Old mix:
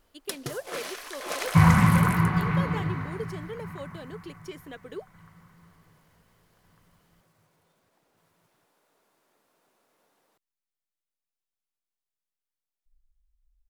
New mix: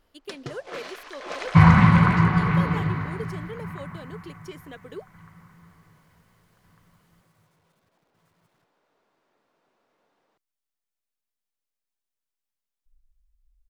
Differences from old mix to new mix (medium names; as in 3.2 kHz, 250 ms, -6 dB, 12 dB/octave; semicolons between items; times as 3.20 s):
first sound: add distance through air 130 m; second sound +4.0 dB